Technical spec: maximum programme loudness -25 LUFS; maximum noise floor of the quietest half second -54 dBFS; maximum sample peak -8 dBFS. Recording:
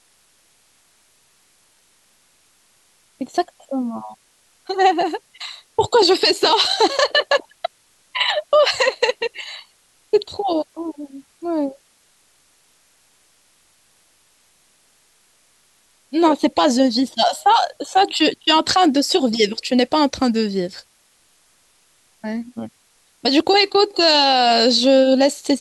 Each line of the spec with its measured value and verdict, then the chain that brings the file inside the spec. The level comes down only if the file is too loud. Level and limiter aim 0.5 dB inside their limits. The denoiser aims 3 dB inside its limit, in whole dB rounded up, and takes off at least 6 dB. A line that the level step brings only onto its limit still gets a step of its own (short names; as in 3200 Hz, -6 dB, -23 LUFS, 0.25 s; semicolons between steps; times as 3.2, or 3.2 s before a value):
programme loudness -17.5 LUFS: fail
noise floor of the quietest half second -58 dBFS: OK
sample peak -5.0 dBFS: fail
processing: gain -8 dB